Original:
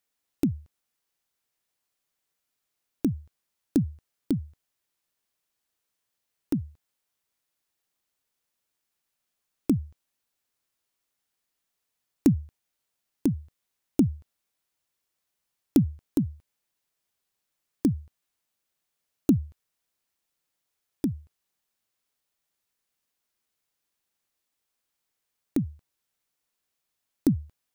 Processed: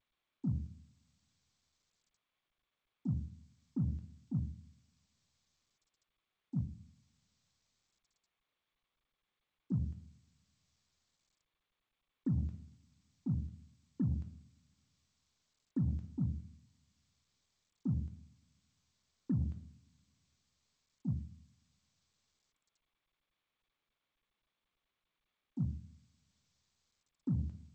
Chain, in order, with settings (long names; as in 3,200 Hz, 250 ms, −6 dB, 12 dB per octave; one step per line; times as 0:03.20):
volume swells 144 ms
noise gate −45 dBFS, range −58 dB
0:06.64–0:09.72: transistor ladder low-pass 400 Hz, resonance 65%
coupled-rooms reverb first 0.68 s, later 2.2 s, from −26 dB, DRR 3.5 dB
brickwall limiter −28.5 dBFS, peak gain reduction 8 dB
harmonic generator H 7 −35 dB, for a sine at −28.5 dBFS
level +2.5 dB
G.722 64 kbit/s 16,000 Hz